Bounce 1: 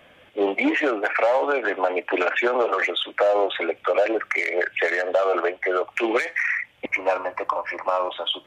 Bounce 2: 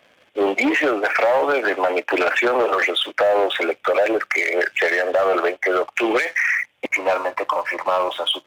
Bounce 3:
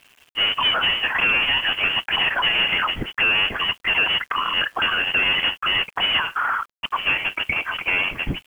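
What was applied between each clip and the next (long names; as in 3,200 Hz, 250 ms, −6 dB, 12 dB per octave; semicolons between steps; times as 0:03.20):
leveller curve on the samples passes 2; low-shelf EQ 110 Hz −12 dB; level −2 dB
each half-wave held at its own peak; voice inversion scrambler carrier 3,300 Hz; bit reduction 8 bits; level −4.5 dB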